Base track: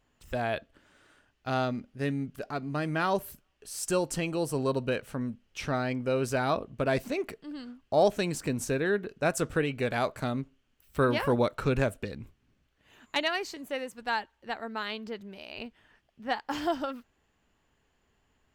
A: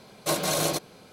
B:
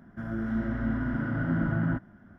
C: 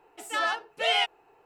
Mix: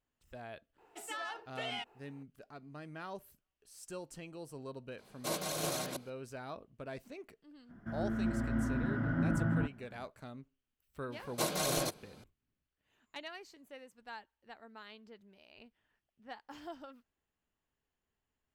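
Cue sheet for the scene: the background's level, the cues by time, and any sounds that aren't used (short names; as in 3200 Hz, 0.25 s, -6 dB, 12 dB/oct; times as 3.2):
base track -17 dB
0.78 add C -5 dB + compressor, threshold -32 dBFS
4.98 add A -12 dB + reverse delay 0.329 s, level -0.5 dB
7.69 add B -4.5 dB
11.12 add A -7.5 dB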